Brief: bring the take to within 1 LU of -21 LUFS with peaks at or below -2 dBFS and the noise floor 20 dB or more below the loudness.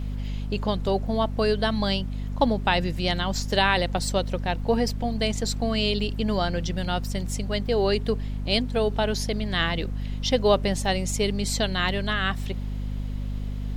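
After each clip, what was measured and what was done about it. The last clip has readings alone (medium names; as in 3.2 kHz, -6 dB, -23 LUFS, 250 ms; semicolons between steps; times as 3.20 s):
hum 50 Hz; highest harmonic 250 Hz; hum level -27 dBFS; noise floor -31 dBFS; noise floor target -46 dBFS; loudness -25.5 LUFS; peak level -6.5 dBFS; loudness target -21.0 LUFS
-> de-hum 50 Hz, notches 5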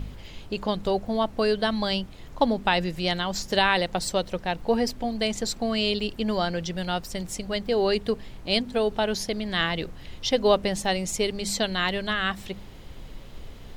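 hum not found; noise floor -43 dBFS; noise floor target -46 dBFS
-> noise print and reduce 6 dB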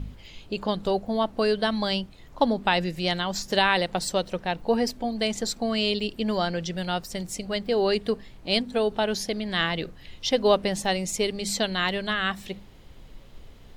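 noise floor -48 dBFS; loudness -26.0 LUFS; peak level -7.5 dBFS; loudness target -21.0 LUFS
-> trim +5 dB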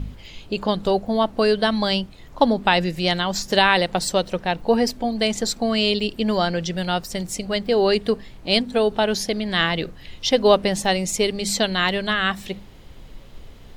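loudness -21.0 LUFS; peak level -2.5 dBFS; noise floor -43 dBFS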